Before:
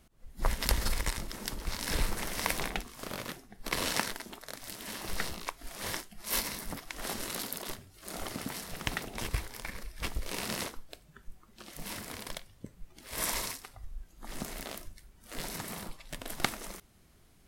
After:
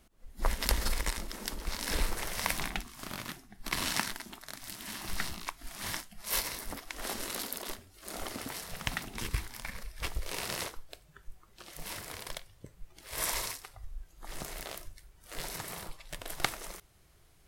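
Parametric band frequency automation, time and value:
parametric band −12 dB 0.59 octaves
0:01.99 120 Hz
0:02.59 490 Hz
0:05.88 490 Hz
0:06.79 140 Hz
0:08.32 140 Hz
0:09.25 700 Hz
0:10.03 230 Hz

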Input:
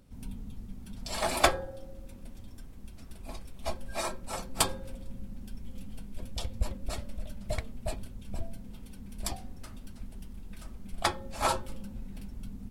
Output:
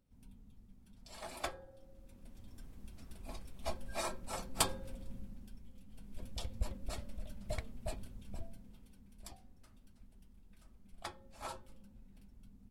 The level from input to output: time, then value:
0:01.56 −17 dB
0:02.66 −5 dB
0:05.15 −5 dB
0:05.83 −15 dB
0:06.15 −6.5 dB
0:08.17 −6.5 dB
0:09.24 −17 dB

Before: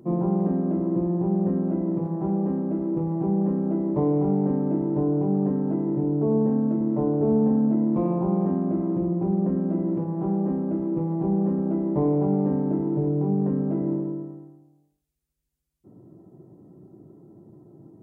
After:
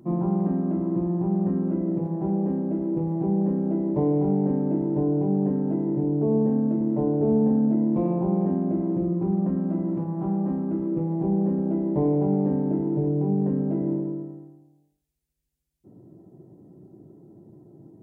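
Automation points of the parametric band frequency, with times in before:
parametric band −7.5 dB 0.49 octaves
0:01.48 480 Hz
0:02.05 1,200 Hz
0:08.95 1,200 Hz
0:09.42 440 Hz
0:10.59 440 Hz
0:11.10 1,200 Hz

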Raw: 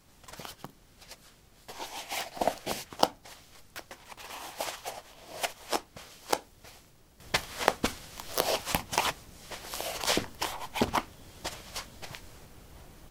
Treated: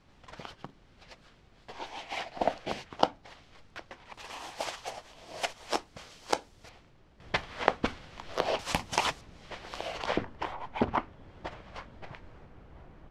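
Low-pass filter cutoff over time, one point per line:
3,500 Hz
from 0:04.14 6,700 Hz
from 0:06.69 3,000 Hz
from 0:08.59 7,100 Hz
from 0:09.21 3,400 Hz
from 0:10.06 1,900 Hz

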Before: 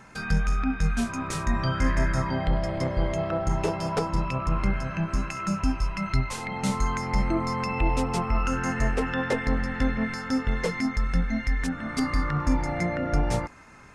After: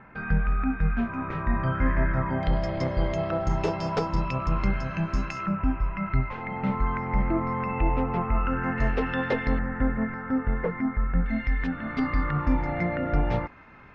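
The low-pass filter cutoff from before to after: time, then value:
low-pass filter 24 dB per octave
2,300 Hz
from 0:02.43 5,600 Hz
from 0:05.46 2,300 Hz
from 0:08.78 4,000 Hz
from 0:09.59 1,800 Hz
from 0:11.26 3,300 Hz

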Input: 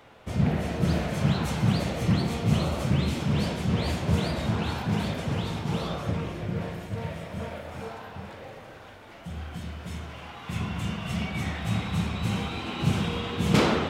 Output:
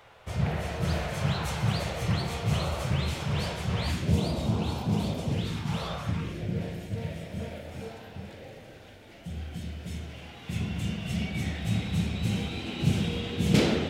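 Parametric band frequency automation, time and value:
parametric band −13 dB 0.99 octaves
0:03.76 250 Hz
0:04.21 1,700 Hz
0:05.25 1,700 Hz
0:05.87 250 Hz
0:06.44 1,100 Hz

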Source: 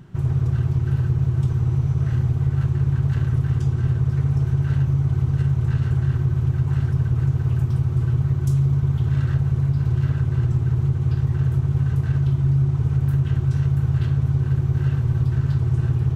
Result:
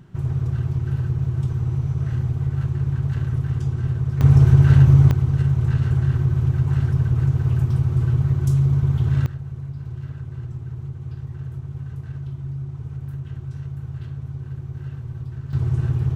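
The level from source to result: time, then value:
−2.5 dB
from 0:04.21 +8 dB
from 0:05.11 +1 dB
from 0:09.26 −11.5 dB
from 0:15.53 −1 dB

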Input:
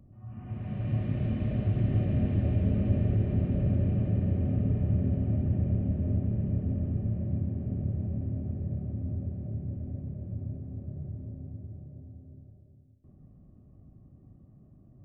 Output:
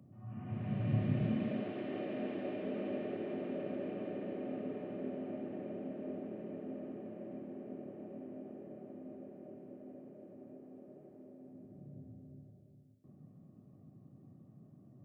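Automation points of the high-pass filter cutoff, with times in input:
high-pass filter 24 dB per octave
0:01.14 120 Hz
0:01.79 300 Hz
0:11.38 300 Hz
0:12.02 130 Hz

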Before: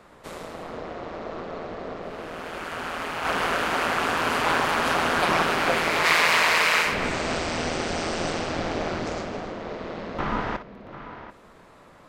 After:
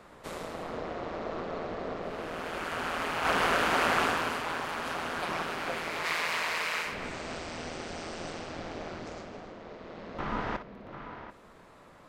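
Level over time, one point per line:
0:04.01 −1.5 dB
0:04.47 −11.5 dB
0:09.81 −11.5 dB
0:10.61 −3.5 dB

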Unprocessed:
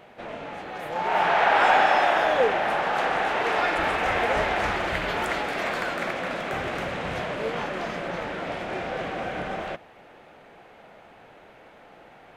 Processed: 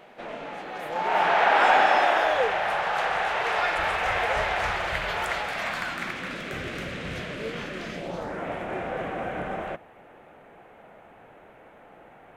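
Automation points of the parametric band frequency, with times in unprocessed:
parametric band −13.5 dB 1.1 octaves
0:01.96 78 Hz
0:02.42 270 Hz
0:05.33 270 Hz
0:06.47 830 Hz
0:07.89 830 Hz
0:08.45 4,700 Hz

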